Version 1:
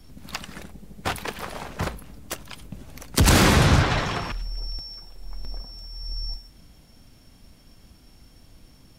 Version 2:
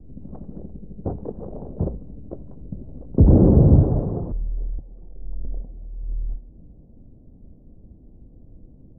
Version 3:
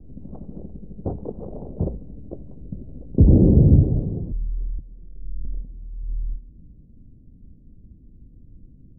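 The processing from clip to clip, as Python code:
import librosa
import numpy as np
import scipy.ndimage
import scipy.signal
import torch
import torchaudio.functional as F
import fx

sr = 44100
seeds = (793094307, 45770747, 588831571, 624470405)

y1 = scipy.signal.sosfilt(scipy.signal.cheby2(4, 80, 3100.0, 'lowpass', fs=sr, output='sos'), x)
y1 = F.gain(torch.from_numpy(y1), 5.5).numpy()
y2 = fx.filter_sweep_lowpass(y1, sr, from_hz=1100.0, to_hz=270.0, start_s=1.44, end_s=4.43, q=0.71)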